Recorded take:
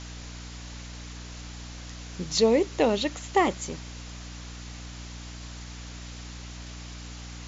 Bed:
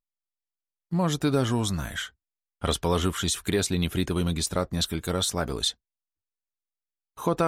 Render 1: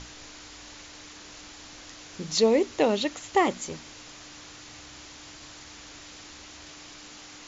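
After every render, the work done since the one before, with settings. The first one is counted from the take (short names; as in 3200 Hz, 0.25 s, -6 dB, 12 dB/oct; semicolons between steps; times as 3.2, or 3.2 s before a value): notches 60/120/180/240 Hz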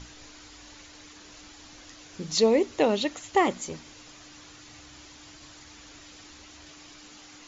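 denoiser 6 dB, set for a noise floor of -47 dBFS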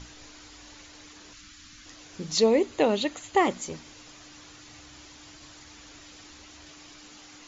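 1.33–1.86 band shelf 570 Hz -15 dB; 2.44–3.41 notch 5500 Hz, Q 7.8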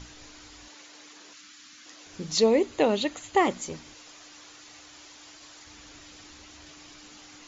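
0.68–2.07 HPF 290 Hz; 3.95–5.67 tone controls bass -12 dB, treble +1 dB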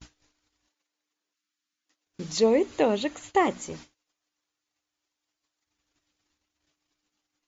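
gate -44 dBFS, range -36 dB; dynamic EQ 4600 Hz, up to -5 dB, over -43 dBFS, Q 0.95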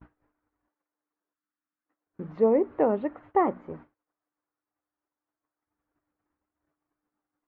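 LPF 1500 Hz 24 dB/oct; low shelf 89 Hz -7 dB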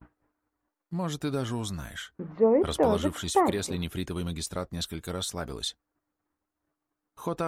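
add bed -6.5 dB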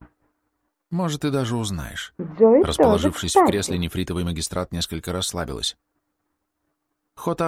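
gain +7.5 dB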